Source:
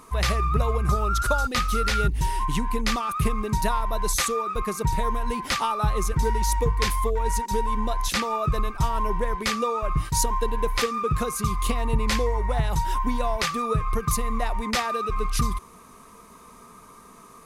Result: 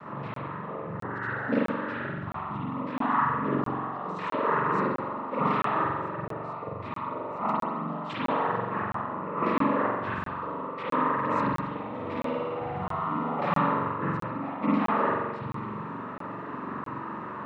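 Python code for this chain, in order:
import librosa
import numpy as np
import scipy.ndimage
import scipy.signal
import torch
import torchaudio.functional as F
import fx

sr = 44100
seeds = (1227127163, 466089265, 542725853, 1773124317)

y = fx.high_shelf(x, sr, hz=2600.0, db=-4.0)
y = fx.over_compress(y, sr, threshold_db=-33.0, ratio=-1.0)
y = fx.noise_vocoder(y, sr, seeds[0], bands=12)
y = fx.air_absorb(y, sr, metres=490.0)
y = fx.room_flutter(y, sr, wall_m=9.5, rt60_s=1.4, at=(11.93, 13.35), fade=0.02)
y = fx.rev_spring(y, sr, rt60_s=1.2, pass_ms=(43,), chirp_ms=25, drr_db=-6.5)
y = fx.buffer_crackle(y, sr, first_s=0.34, period_s=0.66, block=1024, kind='zero')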